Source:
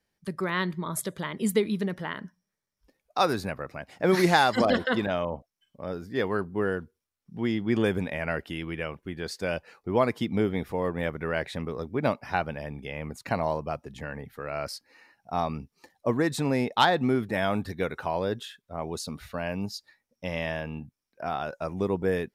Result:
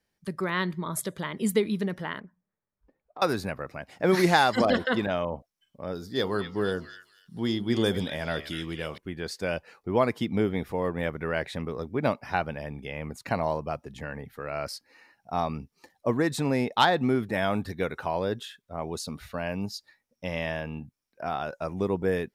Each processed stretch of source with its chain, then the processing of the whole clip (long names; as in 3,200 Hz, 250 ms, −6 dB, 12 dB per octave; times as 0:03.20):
0:02.20–0:03.22: downward compressor 2.5 to 1, threshold −44 dBFS + low-pass filter 1,400 Hz + highs frequency-modulated by the lows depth 0.33 ms
0:05.95–0:08.98: high shelf with overshoot 3,100 Hz +6.5 dB, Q 3 + hum removal 72.06 Hz, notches 19 + echo through a band-pass that steps 246 ms, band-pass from 2,300 Hz, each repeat 0.7 octaves, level −5.5 dB
whole clip: no processing